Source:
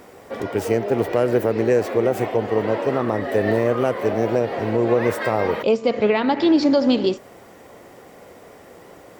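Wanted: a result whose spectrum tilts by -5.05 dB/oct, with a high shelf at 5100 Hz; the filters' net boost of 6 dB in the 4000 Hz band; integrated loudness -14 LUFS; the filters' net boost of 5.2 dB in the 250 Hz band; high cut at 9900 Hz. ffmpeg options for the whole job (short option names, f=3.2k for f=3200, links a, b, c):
-af "lowpass=9.9k,equalizer=f=250:t=o:g=6.5,equalizer=f=4k:t=o:g=5.5,highshelf=f=5.1k:g=5,volume=3dB"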